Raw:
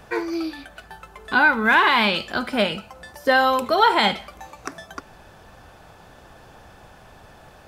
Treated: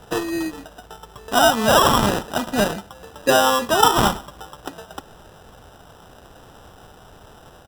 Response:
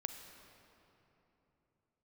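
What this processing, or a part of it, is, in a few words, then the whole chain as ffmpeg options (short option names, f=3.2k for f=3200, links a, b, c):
crushed at another speed: -af "asetrate=35280,aresample=44100,acrusher=samples=25:mix=1:aa=0.000001,asetrate=55125,aresample=44100,volume=1.5dB"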